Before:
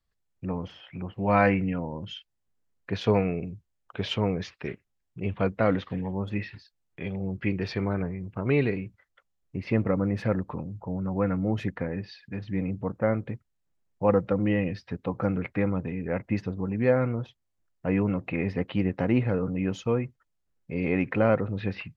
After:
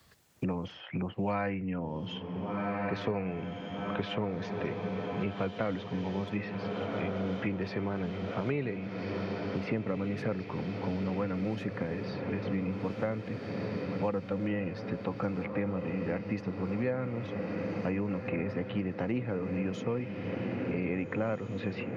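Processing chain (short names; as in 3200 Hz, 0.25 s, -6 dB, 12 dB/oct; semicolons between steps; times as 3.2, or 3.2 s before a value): HPF 100 Hz; on a send: diffused feedback echo 1.562 s, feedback 69%, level -10 dB; on the sum: three-band squash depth 100%; gain -6.5 dB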